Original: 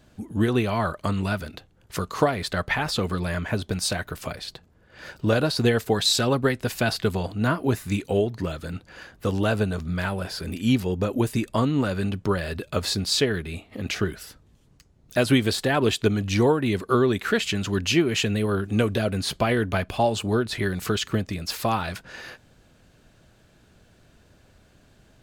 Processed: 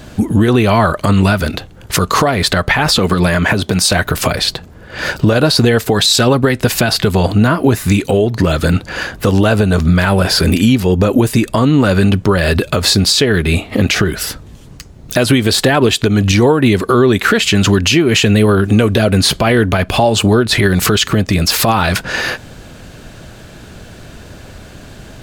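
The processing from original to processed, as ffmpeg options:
-filter_complex "[0:a]asettb=1/sr,asplit=3[a][b][c];[a]atrim=end=2.984[d];[b]atrim=start=2.98:end=3.92,asetpts=PTS-STARTPTS,afade=t=in:d=0.004:c=qsin,afade=t=out:st=0.936:d=0.004:c=qsin,highpass=100[e];[c]atrim=start=3.916[f];[d][e]acrossfade=d=0.004:c1=hsin:c2=qsin[g];[g][f]acrossfade=d=0.004:c1=qsin:c2=hsin,acompressor=threshold=-29dB:ratio=5,alimiter=level_in=23dB:limit=-1dB:release=50:level=0:latency=1,volume=-1dB"

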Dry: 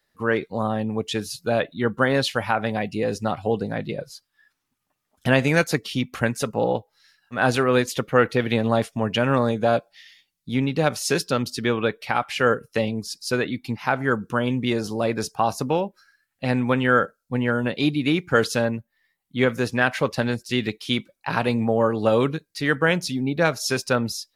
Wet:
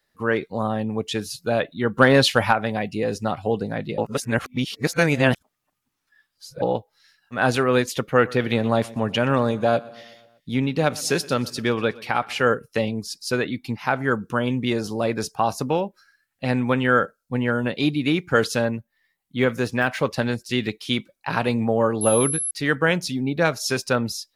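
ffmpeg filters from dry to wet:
-filter_complex "[0:a]asplit=3[a][b][c];[a]afade=t=out:st=1.95:d=0.02[d];[b]acontrast=56,afade=t=in:st=1.95:d=0.02,afade=t=out:st=2.52:d=0.02[e];[c]afade=t=in:st=2.52:d=0.02[f];[d][e][f]amix=inputs=3:normalize=0,asettb=1/sr,asplit=3[g][h][i];[g]atrim=end=8.044[j];[h]atrim=start=8.04:end=12.42,asetpts=PTS-STARTPTS,afade=t=in:d=0.004:c=qsin,afade=t=out:st=4.376:d=0.004:c=qsin,aecho=1:1:122|244|366|488|610:0.0841|0.0496|0.0293|0.0173|0.0102,atrim=end_sample=193158[k];[i]atrim=start=12.416[l];[j][k]acrossfade=d=0.004:c1=hsin:c2=qsin[m];[m][l]acrossfade=d=0.004:c1=qsin:c2=hsin,asettb=1/sr,asplit=3[n][o][p];[n]atrim=end=19.404[q];[o]atrim=start=19.4:end=20.02,asetpts=PTS-STARTPTS,afade=t=in:d=0.004:c=qsin,afade=t=out:st=0.616:d=0.004:c=qsin,deesser=0.7[r];[p]atrim=start=20.016[s];[q][r]acrossfade=d=0.004:c1=hsin:c2=qsin[t];[t][s]acrossfade=d=0.004:c1=qsin:c2=hsin,asettb=1/sr,asplit=3[u][v][w];[u]atrim=end=22.014[x];[v]atrim=start=22.01:end=22.51,asetpts=PTS-STARTPTS,afade=t=in:d=0.004:c=qsin,afade=t=out:st=0.496:d=0.004:c=qsin,aeval=exprs='val(0)+0.0708*sin(2*PI*11000*n/s)':c=same[y];[w]atrim=start=22.506[z];[x][y]acrossfade=d=0.004:c1=hsin:c2=qsin[aa];[aa][z]acrossfade=d=0.004:c1=qsin:c2=hsin,asplit=3[ab][ac][ad];[ab]atrim=end=3.982[ae];[ac]atrim=start=3.978:end=6.622,asetpts=PTS-STARTPTS,areverse[af];[ad]atrim=start=6.618[ag];[ae][af]acrossfade=d=0.004:c1=hsin:c2=hsin[ah];[ah][ag]acrossfade=d=0.004:c1=hsin:c2=hsin"

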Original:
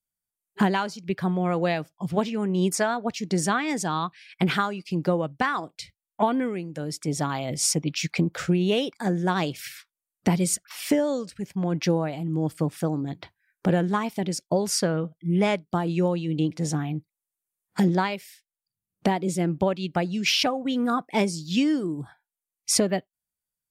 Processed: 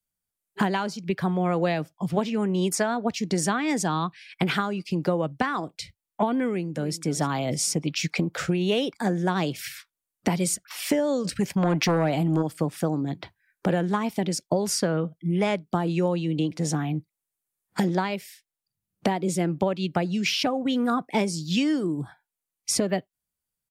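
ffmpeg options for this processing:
-filter_complex "[0:a]asplit=2[a][b];[b]afade=t=in:st=6.46:d=0.01,afade=t=out:st=7:d=0.01,aecho=0:1:300|600|900|1200:0.199526|0.0798105|0.0319242|0.0127697[c];[a][c]amix=inputs=2:normalize=0,asplit=3[d][e][f];[d]afade=t=out:st=11.24:d=0.02[g];[e]aeval=exprs='0.251*sin(PI/2*2*val(0)/0.251)':c=same,afade=t=in:st=11.24:d=0.02,afade=t=out:st=12.41:d=0.02[h];[f]afade=t=in:st=12.41:d=0.02[i];[g][h][i]amix=inputs=3:normalize=0,lowshelf=f=390:g=4,acrossover=split=120|480[j][k][l];[j]acompressor=threshold=-49dB:ratio=4[m];[k]acompressor=threshold=-27dB:ratio=4[n];[l]acompressor=threshold=-26dB:ratio=4[o];[m][n][o]amix=inputs=3:normalize=0,volume=2dB"

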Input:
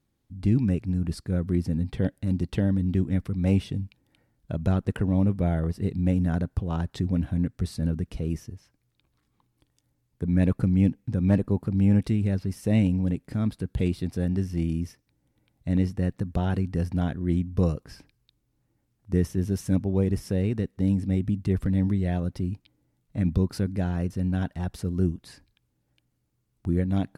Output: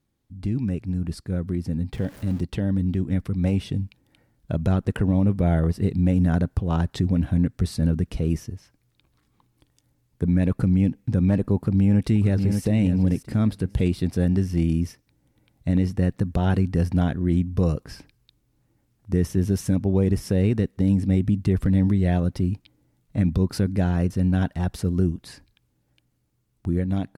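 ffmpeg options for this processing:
-filter_complex "[0:a]asettb=1/sr,asplit=3[a][b][c];[a]atrim=end=1.934[d];[b]atrim=start=1.93:end=2.41,asetpts=PTS-STARTPTS,afade=t=in:d=0.004:c=qsin,afade=t=out:st=0.476:d=0.004:c=qsin,aeval=exprs='val(0)+0.5*0.01*sgn(val(0))':c=same[e];[c]atrim=start=2.406[f];[d][e]acrossfade=d=0.004:c1=hsin:c2=qsin[g];[g][f]acrossfade=d=0.004:c1=qsin:c2=hsin,asplit=2[h][i];[i]afade=t=in:st=11.56:d=0.01,afade=t=out:st=12.63:d=0.01,aecho=0:1:590|1180|1770:0.375837|0.0751675|0.0150335[j];[h][j]amix=inputs=2:normalize=0,alimiter=limit=-17.5dB:level=0:latency=1:release=110,dynaudnorm=f=610:g=11:m=5.5dB"

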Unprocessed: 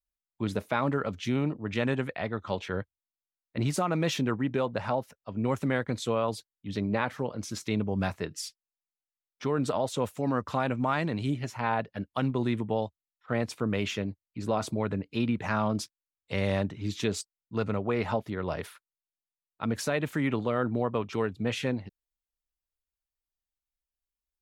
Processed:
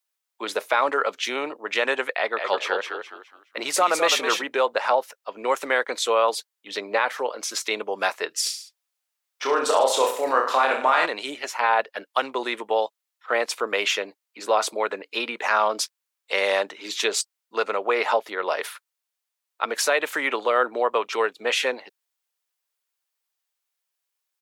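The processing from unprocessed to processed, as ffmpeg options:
-filter_complex "[0:a]asettb=1/sr,asplit=3[a][b][c];[a]atrim=end=2.144[d];[b]atrim=start=2.14:end=4.44,asetpts=PTS-STARTPTS,afade=t=in:d=0.004:c=qsin,afade=t=out:st=2.296:d=0.004:c=qsin,asplit=5[e][f][g][h][i];[f]adelay=208,afreqshift=-61,volume=-5.5dB[j];[g]adelay=416,afreqshift=-122,volume=-15.1dB[k];[h]adelay=624,afreqshift=-183,volume=-24.8dB[l];[i]adelay=832,afreqshift=-244,volume=-34.4dB[m];[e][j][k][l][m]amix=inputs=5:normalize=0,atrim=end_sample=101430[n];[c]atrim=start=4.436[o];[d][n]acrossfade=d=0.004:c1=hsin:c2=qsin[p];[p][o]acrossfade=d=0.004:c1=qsin:c2=hsin,asplit=3[q][r][s];[q]afade=t=out:st=8.45:d=0.02[t];[r]aecho=1:1:30|64.5|104.2|149.8|202.3:0.631|0.398|0.251|0.158|0.1,afade=t=in:st=8.45:d=0.02,afade=t=out:st=11.05:d=0.02[u];[s]afade=t=in:st=11.05:d=0.02[v];[t][u][v]amix=inputs=3:normalize=0,highpass=f=490:w=0.5412,highpass=f=490:w=1.3066,equalizer=f=650:w=2:g=-3.5,alimiter=level_in=18.5dB:limit=-1dB:release=50:level=0:latency=1,volume=-6.5dB"

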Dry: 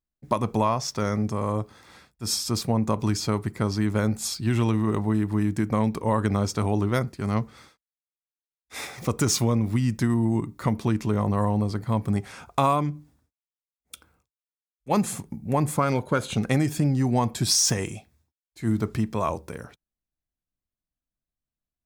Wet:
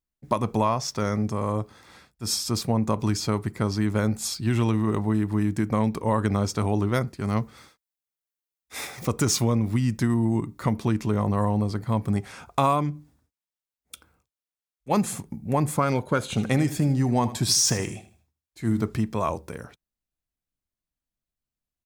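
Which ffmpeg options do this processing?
-filter_complex "[0:a]asettb=1/sr,asplit=3[a][b][c];[a]atrim=end=7.294[d];[b]atrim=start=7.29:end=9.06,asetpts=PTS-STARTPTS,afade=t=in:d=0.004:c=qsin,afade=t=out:st=1.766:d=0.004:c=qsin,highshelf=f=11k:g=7.5[e];[c]atrim=start=9.056[f];[d][e]acrossfade=d=0.004:c1=hsin:c2=qsin[g];[g][f]acrossfade=d=0.004:c1=qsin:c2=hsin,asplit=3[h][i][j];[h]afade=t=out:st=16.33:d=0.02[k];[i]aecho=1:1:78|156|234:0.2|0.0678|0.0231,afade=t=in:st=16.33:d=0.02,afade=t=out:st=18.86:d=0.02[l];[j]afade=t=in:st=18.86:d=0.02[m];[k][l][m]amix=inputs=3:normalize=0"

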